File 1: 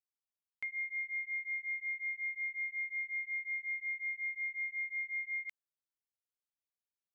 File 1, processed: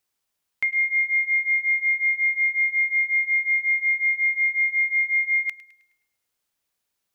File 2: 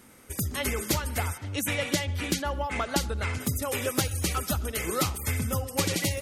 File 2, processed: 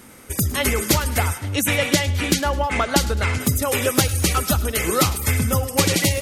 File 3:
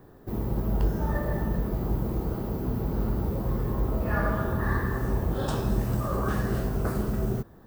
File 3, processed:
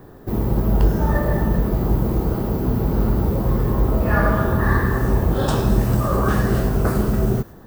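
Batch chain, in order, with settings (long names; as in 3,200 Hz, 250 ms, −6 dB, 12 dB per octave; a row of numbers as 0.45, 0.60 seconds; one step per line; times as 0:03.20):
delay with a high-pass on its return 105 ms, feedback 42%, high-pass 1,600 Hz, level −16 dB
loudness normalisation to −20 LKFS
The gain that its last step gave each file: +16.0, +9.0, +9.0 decibels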